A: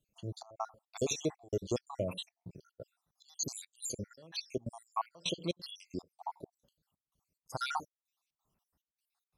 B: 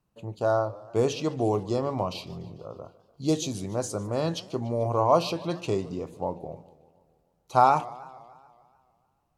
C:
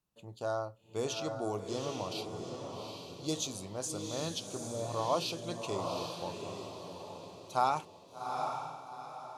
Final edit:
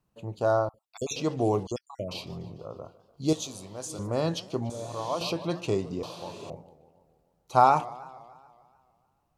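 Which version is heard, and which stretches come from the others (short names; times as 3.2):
B
0.69–1.16 from A
1.67–2.11 from A
3.33–3.99 from C
4.7–5.21 from C
6.03–6.5 from C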